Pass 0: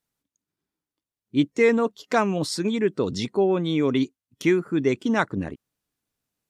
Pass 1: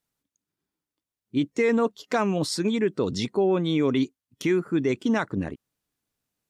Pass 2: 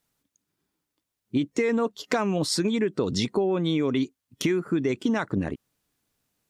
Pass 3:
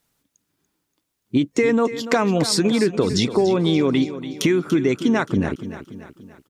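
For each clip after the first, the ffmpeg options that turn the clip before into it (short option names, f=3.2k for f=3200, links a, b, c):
-af "alimiter=limit=-14dB:level=0:latency=1:release=45"
-af "acompressor=threshold=-28dB:ratio=6,volume=6.5dB"
-af "aecho=1:1:288|576|864|1152|1440:0.237|0.119|0.0593|0.0296|0.0148,volume=6dB"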